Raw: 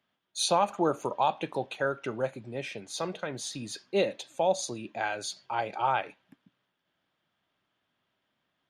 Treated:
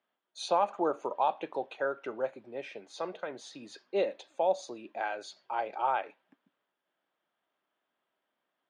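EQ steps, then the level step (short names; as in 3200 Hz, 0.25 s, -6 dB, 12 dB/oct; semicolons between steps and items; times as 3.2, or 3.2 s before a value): HPF 380 Hz 12 dB/oct; LPF 6400 Hz 12 dB/oct; high shelf 2100 Hz -11.5 dB; 0.0 dB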